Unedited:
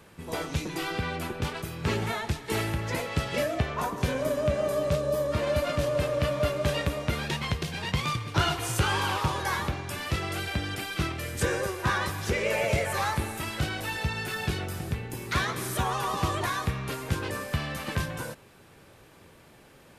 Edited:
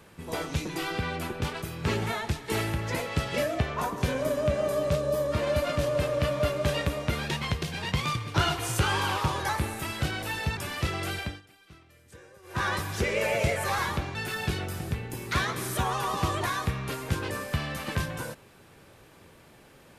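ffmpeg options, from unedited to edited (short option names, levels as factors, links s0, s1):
-filter_complex "[0:a]asplit=7[s0][s1][s2][s3][s4][s5][s6];[s0]atrim=end=9.492[s7];[s1]atrim=start=13.068:end=14.152[s8];[s2]atrim=start=9.858:end=10.71,asetpts=PTS-STARTPTS,afade=t=out:st=0.592:d=0.26:silence=0.0668344[s9];[s3]atrim=start=10.71:end=11.71,asetpts=PTS-STARTPTS,volume=0.0668[s10];[s4]atrim=start=11.71:end=13.072,asetpts=PTS-STARTPTS,afade=t=in:d=0.26:silence=0.0668344[s11];[s5]atrim=start=9.488:end=9.862[s12];[s6]atrim=start=14.148[s13];[s7][s8]acrossfade=d=0.004:c1=hsin:c2=hsin[s14];[s9][s10][s11]concat=n=3:v=0:a=1[s15];[s14][s15]acrossfade=d=0.004:c1=hsin:c2=hsin[s16];[s16][s12]acrossfade=d=0.004:c1=hsin:c2=hsin[s17];[s17][s13]acrossfade=d=0.004:c1=hsin:c2=hsin"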